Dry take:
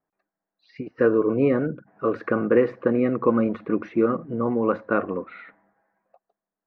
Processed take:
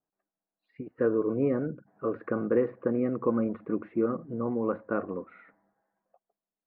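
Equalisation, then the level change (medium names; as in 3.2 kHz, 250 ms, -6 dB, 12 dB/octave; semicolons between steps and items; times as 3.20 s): distance through air 360 m; treble shelf 2.6 kHz -9.5 dB; -5.5 dB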